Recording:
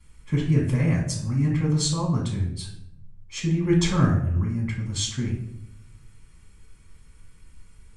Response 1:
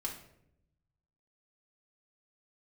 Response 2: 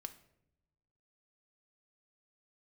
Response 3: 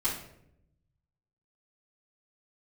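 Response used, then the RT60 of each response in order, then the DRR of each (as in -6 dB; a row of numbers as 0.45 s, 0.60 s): 3; 0.75 s, 0.85 s, 0.75 s; -2.5 dB, 7.5 dB, -12.5 dB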